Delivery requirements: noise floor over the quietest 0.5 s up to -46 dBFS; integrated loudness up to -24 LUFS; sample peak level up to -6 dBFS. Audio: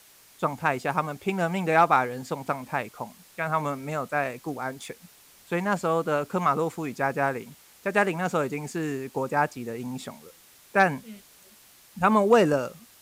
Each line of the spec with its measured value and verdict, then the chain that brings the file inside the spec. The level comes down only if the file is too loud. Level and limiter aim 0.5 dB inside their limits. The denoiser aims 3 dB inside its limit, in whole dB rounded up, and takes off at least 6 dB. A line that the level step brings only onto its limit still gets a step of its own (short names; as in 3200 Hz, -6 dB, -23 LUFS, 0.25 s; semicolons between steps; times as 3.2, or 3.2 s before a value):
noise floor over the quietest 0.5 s -54 dBFS: OK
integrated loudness -26.5 LUFS: OK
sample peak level -8.0 dBFS: OK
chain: none